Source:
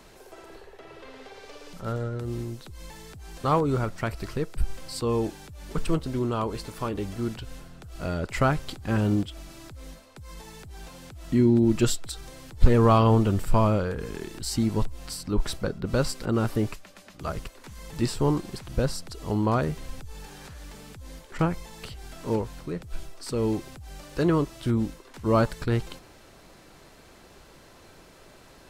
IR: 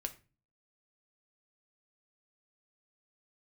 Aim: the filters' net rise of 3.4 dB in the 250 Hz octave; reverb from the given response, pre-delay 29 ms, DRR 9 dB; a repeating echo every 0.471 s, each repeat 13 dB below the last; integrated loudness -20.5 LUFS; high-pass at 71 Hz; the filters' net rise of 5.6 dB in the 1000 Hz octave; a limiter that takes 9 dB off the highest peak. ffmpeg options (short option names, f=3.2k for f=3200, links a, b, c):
-filter_complex "[0:a]highpass=71,equalizer=f=250:t=o:g=4,equalizer=f=1k:t=o:g=6.5,alimiter=limit=-13dB:level=0:latency=1,aecho=1:1:471|942|1413:0.224|0.0493|0.0108,asplit=2[a][b];[1:a]atrim=start_sample=2205,adelay=29[c];[b][c]afir=irnorm=-1:irlink=0,volume=-8dB[d];[a][d]amix=inputs=2:normalize=0,volume=5.5dB"